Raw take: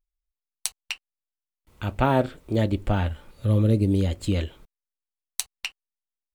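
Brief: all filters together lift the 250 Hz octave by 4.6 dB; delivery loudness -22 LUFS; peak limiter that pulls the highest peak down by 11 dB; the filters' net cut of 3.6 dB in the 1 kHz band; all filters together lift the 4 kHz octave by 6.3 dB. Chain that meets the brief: peaking EQ 250 Hz +6 dB; peaking EQ 1 kHz -5.5 dB; peaking EQ 4 kHz +8.5 dB; trim +3.5 dB; peak limiter -8.5 dBFS

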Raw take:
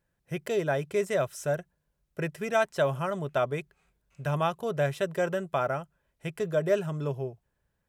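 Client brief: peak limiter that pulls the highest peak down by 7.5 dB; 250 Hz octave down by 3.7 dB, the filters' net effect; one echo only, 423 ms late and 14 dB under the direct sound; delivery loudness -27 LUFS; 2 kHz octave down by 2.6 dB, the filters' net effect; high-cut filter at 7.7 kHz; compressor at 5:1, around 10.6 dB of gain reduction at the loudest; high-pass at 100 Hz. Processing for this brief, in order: high-pass 100 Hz; low-pass 7.7 kHz; peaking EQ 250 Hz -6.5 dB; peaking EQ 2 kHz -3.5 dB; compression 5:1, threshold -33 dBFS; peak limiter -29.5 dBFS; delay 423 ms -14 dB; trim +13.5 dB

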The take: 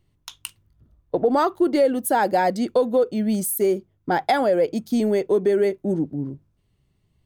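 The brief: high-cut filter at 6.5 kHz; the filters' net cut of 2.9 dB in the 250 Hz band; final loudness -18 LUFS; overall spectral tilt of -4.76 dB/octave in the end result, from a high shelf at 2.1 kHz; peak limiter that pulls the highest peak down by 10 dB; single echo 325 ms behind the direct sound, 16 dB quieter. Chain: low-pass 6.5 kHz; peaking EQ 250 Hz -4 dB; treble shelf 2.1 kHz +6.5 dB; peak limiter -16 dBFS; delay 325 ms -16 dB; trim +7.5 dB

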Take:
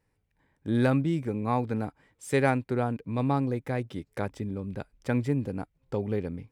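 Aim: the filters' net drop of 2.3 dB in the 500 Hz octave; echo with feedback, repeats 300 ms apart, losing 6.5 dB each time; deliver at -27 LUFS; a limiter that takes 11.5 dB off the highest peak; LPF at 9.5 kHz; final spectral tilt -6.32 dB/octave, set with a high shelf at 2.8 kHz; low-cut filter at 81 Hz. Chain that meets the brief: high-pass 81 Hz; low-pass 9.5 kHz; peaking EQ 500 Hz -3 dB; treble shelf 2.8 kHz +4 dB; peak limiter -22 dBFS; feedback delay 300 ms, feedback 47%, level -6.5 dB; trim +6 dB

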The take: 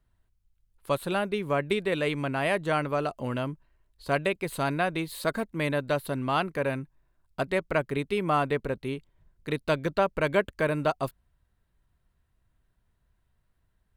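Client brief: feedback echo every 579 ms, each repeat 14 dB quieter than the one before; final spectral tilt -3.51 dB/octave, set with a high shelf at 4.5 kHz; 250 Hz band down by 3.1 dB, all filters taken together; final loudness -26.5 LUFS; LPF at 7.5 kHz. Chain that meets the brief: low-pass 7.5 kHz; peaking EQ 250 Hz -4.5 dB; treble shelf 4.5 kHz +8.5 dB; feedback delay 579 ms, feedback 20%, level -14 dB; trim +2.5 dB

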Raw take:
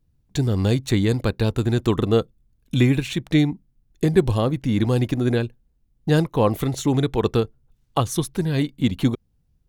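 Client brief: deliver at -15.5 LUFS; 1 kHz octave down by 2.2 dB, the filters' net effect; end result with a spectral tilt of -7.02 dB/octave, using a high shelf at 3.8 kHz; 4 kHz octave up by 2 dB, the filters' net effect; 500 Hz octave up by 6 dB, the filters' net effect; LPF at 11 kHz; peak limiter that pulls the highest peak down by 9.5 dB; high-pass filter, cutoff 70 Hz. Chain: high-pass 70 Hz; low-pass 11 kHz; peaking EQ 500 Hz +8.5 dB; peaking EQ 1 kHz -6 dB; treble shelf 3.8 kHz -8 dB; peaking EQ 4 kHz +7 dB; trim +7 dB; peak limiter -4 dBFS

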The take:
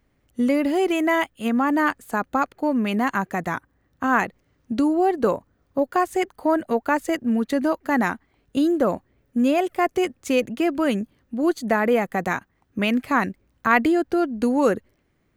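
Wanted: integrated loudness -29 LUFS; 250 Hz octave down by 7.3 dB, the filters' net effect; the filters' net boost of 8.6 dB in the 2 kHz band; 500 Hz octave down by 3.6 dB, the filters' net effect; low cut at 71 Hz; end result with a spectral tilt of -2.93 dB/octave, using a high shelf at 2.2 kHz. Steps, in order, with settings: high-pass 71 Hz; peaking EQ 250 Hz -8.5 dB; peaking EQ 500 Hz -3 dB; peaking EQ 2 kHz +8 dB; treble shelf 2.2 kHz +5.5 dB; trim -7.5 dB

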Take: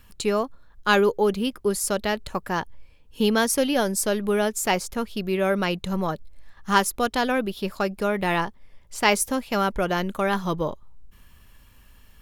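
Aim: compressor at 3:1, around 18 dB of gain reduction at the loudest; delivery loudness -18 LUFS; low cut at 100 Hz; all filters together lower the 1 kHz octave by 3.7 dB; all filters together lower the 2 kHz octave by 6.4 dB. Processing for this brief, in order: high-pass 100 Hz; peaking EQ 1 kHz -3 dB; peaking EQ 2 kHz -7.5 dB; compression 3:1, threshold -43 dBFS; trim +23.5 dB

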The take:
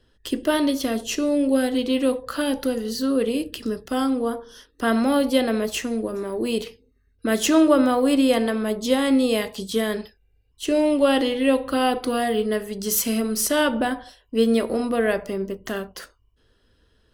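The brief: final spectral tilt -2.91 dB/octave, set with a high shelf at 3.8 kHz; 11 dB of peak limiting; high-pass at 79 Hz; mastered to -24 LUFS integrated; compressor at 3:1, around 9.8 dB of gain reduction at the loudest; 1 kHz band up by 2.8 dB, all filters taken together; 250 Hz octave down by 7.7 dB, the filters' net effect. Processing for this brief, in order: high-pass 79 Hz; peaking EQ 250 Hz -9 dB; peaking EQ 1 kHz +4 dB; treble shelf 3.8 kHz +6.5 dB; compression 3:1, threshold -26 dBFS; trim +6 dB; peak limiter -13 dBFS

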